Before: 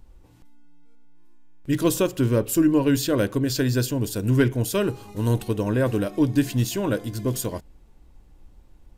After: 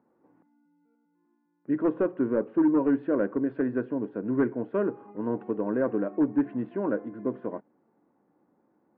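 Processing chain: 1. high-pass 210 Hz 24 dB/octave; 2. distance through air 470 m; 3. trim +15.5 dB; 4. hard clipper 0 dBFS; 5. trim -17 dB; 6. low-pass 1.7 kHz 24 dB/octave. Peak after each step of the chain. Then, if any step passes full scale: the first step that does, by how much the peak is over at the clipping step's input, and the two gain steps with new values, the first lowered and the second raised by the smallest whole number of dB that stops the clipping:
-7.0 dBFS, -8.0 dBFS, +7.5 dBFS, 0.0 dBFS, -17.0 dBFS, -16.0 dBFS; step 3, 7.5 dB; step 3 +7.5 dB, step 5 -9 dB

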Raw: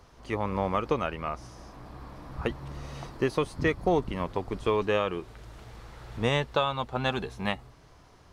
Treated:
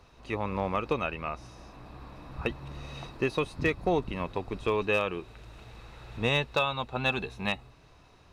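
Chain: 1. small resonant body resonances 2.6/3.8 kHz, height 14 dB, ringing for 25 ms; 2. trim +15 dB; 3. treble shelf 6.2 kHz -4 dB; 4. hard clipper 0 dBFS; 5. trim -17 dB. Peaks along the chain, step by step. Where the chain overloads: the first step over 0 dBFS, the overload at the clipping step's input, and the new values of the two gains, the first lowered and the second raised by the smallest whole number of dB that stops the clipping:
-10.0 dBFS, +5.0 dBFS, +4.5 dBFS, 0.0 dBFS, -17.0 dBFS; step 2, 4.5 dB; step 2 +10 dB, step 5 -12 dB

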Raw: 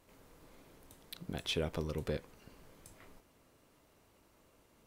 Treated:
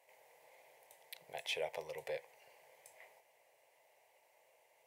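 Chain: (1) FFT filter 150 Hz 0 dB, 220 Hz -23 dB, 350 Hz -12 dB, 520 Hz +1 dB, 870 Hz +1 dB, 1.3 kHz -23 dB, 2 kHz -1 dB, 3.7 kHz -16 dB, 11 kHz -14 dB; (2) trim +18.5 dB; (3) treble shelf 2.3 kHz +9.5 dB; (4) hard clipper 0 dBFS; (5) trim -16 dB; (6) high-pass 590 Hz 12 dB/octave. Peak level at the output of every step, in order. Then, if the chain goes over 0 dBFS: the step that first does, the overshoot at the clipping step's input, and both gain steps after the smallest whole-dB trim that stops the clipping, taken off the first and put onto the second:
-25.0 dBFS, -6.5 dBFS, -6.0 dBFS, -6.0 dBFS, -22.0 dBFS, -27.0 dBFS; nothing clips

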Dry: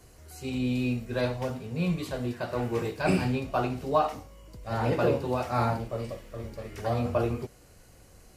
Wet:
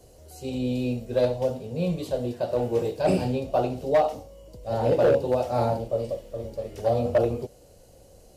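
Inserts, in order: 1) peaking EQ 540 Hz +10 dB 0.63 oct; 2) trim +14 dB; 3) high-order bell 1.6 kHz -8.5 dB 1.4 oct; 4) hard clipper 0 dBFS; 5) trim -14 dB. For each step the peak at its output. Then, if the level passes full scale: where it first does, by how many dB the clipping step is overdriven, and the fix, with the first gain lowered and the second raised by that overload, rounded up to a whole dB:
-7.5 dBFS, +6.5 dBFS, +6.0 dBFS, 0.0 dBFS, -14.0 dBFS; step 2, 6.0 dB; step 2 +8 dB, step 5 -8 dB

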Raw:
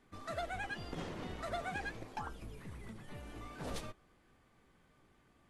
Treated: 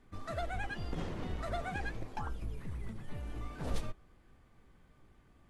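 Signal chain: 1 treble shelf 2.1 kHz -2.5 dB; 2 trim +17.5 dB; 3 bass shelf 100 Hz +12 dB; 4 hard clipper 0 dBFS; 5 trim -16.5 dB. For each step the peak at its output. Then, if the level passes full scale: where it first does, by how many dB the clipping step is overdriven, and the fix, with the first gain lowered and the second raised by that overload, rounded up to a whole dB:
-29.5 dBFS, -12.0 dBFS, -5.5 dBFS, -5.5 dBFS, -22.0 dBFS; nothing clips

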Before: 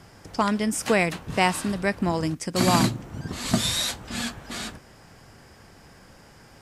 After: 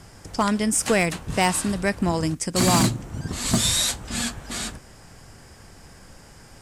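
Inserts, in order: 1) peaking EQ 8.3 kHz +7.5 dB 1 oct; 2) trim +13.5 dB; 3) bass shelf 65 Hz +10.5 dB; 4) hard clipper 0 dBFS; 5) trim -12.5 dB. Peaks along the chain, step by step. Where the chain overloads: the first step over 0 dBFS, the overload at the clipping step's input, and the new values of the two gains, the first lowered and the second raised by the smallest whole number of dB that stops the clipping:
-7.5 dBFS, +6.0 dBFS, +7.0 dBFS, 0.0 dBFS, -12.5 dBFS; step 2, 7.0 dB; step 2 +6.5 dB, step 5 -5.5 dB

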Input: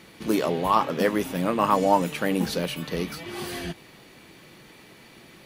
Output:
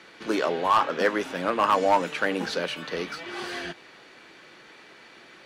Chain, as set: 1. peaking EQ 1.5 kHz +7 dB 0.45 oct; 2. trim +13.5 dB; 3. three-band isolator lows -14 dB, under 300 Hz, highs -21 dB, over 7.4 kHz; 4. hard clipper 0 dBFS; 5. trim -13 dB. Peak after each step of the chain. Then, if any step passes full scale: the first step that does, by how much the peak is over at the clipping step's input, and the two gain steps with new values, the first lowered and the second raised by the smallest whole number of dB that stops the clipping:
-4.5 dBFS, +9.0 dBFS, +8.5 dBFS, 0.0 dBFS, -13.0 dBFS; step 2, 8.5 dB; step 2 +4.5 dB, step 5 -4 dB

